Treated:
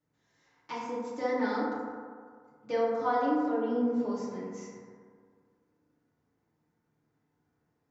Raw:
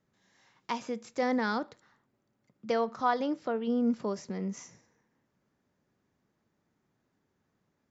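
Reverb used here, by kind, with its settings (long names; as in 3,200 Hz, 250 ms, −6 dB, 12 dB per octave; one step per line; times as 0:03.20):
feedback delay network reverb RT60 1.9 s, low-frequency decay 0.9×, high-frequency decay 0.3×, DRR −9 dB
level −11 dB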